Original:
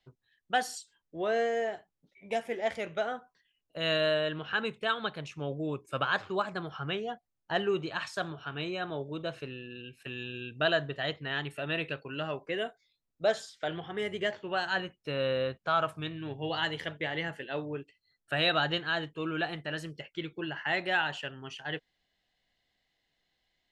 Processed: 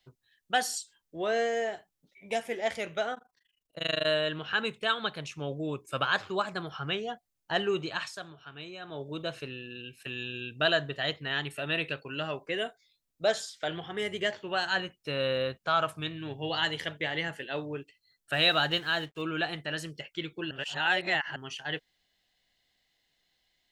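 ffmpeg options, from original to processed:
ffmpeg -i in.wav -filter_complex "[0:a]asettb=1/sr,asplit=3[link_01][link_02][link_03];[link_01]atrim=end=3.144[link_04];[link_02]atrim=start=3.14:end=4.07,asetpts=PTS-STARTPTS,afade=type=in:duration=0.004:curve=qsin,afade=type=out:start_time=0.926:duration=0.004:curve=qsin,tremolo=f=25:d=0.974[link_05];[link_03]atrim=start=4.066[link_06];[link_04][link_05]acrossfade=duration=0.004:curve1=hsin:curve2=qsin[link_07];[link_07][link_06]acrossfade=duration=0.004:curve1=qsin:curve2=hsin,asettb=1/sr,asplit=3[link_08][link_09][link_10];[link_08]atrim=end=18.334[link_11];[link_09]atrim=start=18.33:end=19.22,asetpts=PTS-STARTPTS,afade=type=in:duration=0.004:curve=qsin,afade=type=out:start_time=0.886:duration=0.004:curve=qsin,aeval=exprs='sgn(val(0))*max(abs(val(0))-0.00106,0)':channel_layout=same[link_12];[link_10]atrim=start=19.216[link_13];[link_11][link_12]acrossfade=duration=0.004:curve1=hsin:curve2=qsin[link_14];[link_14][link_13]acrossfade=duration=0.004:curve1=qsin:curve2=hsin,asplit=5[link_15][link_16][link_17][link_18][link_19];[link_15]atrim=end=8.2,asetpts=PTS-STARTPTS,afade=type=out:start_time=7.94:duration=0.26:silence=0.334965[link_20];[link_16]atrim=start=8.2:end=8.83,asetpts=PTS-STARTPTS,volume=-9.5dB[link_21];[link_17]atrim=start=8.83:end=20.512,asetpts=PTS-STARTPTS,afade=type=in:duration=0.26:silence=0.334965[link_22];[link_18]atrim=start=20.508:end=21.362,asetpts=PTS-STARTPTS,areverse[link_23];[link_19]atrim=start=21.358[link_24];[link_20][link_21][link_22]concat=n=3:v=0:a=1[link_25];[link_25][link_23]acrossfade=duration=0.004:curve1=hsin:curve2=hsin[link_26];[link_26][link_24]acrossfade=duration=0.004:curve1=hsin:curve2=hsin,highshelf=frequency=3200:gain=8.5" out.wav

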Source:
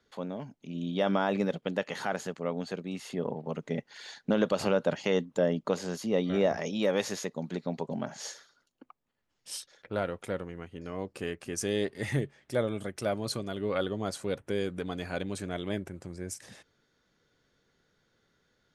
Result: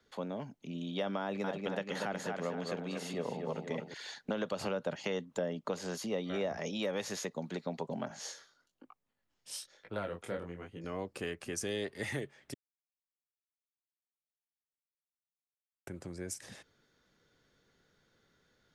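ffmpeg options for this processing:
ffmpeg -i in.wav -filter_complex "[0:a]asettb=1/sr,asplit=3[link_01][link_02][link_03];[link_01]atrim=end=1.204[link_04];[link_02]atrim=start=1.2:end=3.94,asetpts=PTS-STARTPTS,afade=type=in:duration=0.004:curve=qsin,afade=type=out:start_time=2.736:duration=0.004:curve=qsin,asplit=2[link_05][link_06];[link_06]adelay=238,lowpass=frequency=4900:poles=1,volume=-6dB,asplit=2[link_07][link_08];[link_08]adelay=238,lowpass=frequency=4900:poles=1,volume=0.49,asplit=2[link_09][link_10];[link_10]adelay=238,lowpass=frequency=4900:poles=1,volume=0.49,asplit=2[link_11][link_12];[link_12]adelay=238,lowpass=frequency=4900:poles=1,volume=0.49,asplit=2[link_13][link_14];[link_14]adelay=238,lowpass=frequency=4900:poles=1,volume=0.49,asplit=2[link_15][link_16];[link_16]adelay=238,lowpass=frequency=4900:poles=1,volume=0.49[link_17];[link_05][link_07][link_09][link_11][link_13][link_15][link_17]amix=inputs=7:normalize=0,atrim=end_sample=120834[link_18];[link_03]atrim=start=3.936[link_19];[link_04][link_18]acrossfade=duration=0.004:curve1=hsin:curve2=qsin[link_20];[link_20][link_19]acrossfade=duration=0.004:curve1=qsin:curve2=hsin,asettb=1/sr,asplit=3[link_21][link_22][link_23];[link_21]atrim=end=8.084[link_24];[link_22]atrim=start=8.08:end=10.84,asetpts=PTS-STARTPTS,afade=type=in:duration=0.004:curve=qsin,afade=type=out:start_time=2.756:duration=0.004:curve=qsin,flanger=delay=18:depth=7.3:speed=1.1[link_25];[link_23]atrim=start=10.836[link_26];[link_24][link_25]acrossfade=duration=0.004:curve1=hsin:curve2=qsin[link_27];[link_27][link_26]acrossfade=duration=0.004:curve1=qsin:curve2=hsin,asplit=3[link_28][link_29][link_30];[link_28]atrim=end=12.54,asetpts=PTS-STARTPTS,afade=type=out:start_time=12.536:duration=0.004:curve=hsin[link_31];[link_29]atrim=start=12.54:end=15.87,asetpts=PTS-STARTPTS,volume=0[link_32];[link_30]atrim=start=15.87,asetpts=PTS-STARTPTS,afade=type=in:duration=0.004:curve=hsin[link_33];[link_31][link_32][link_33]concat=n=3:v=0:a=1,acrossover=split=190|480[link_34][link_35][link_36];[link_34]acompressor=threshold=-47dB:ratio=4[link_37];[link_35]acompressor=threshold=-42dB:ratio=4[link_38];[link_36]acompressor=threshold=-36dB:ratio=4[link_39];[link_37][link_38][link_39]amix=inputs=3:normalize=0" out.wav

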